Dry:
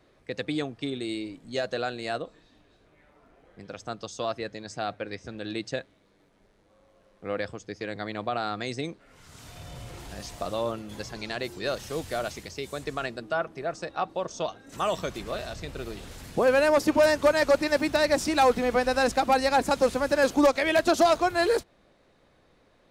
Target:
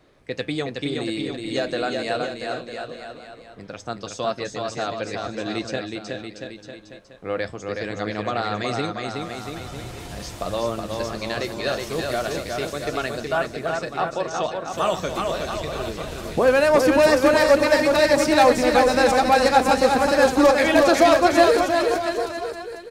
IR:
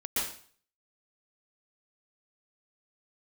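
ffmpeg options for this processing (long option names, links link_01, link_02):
-af "flanger=delay=6.4:depth=7.5:regen=-69:speed=0.22:shape=triangular,aecho=1:1:370|684.5|951.8|1179|1372:0.631|0.398|0.251|0.158|0.1,volume=8.5dB"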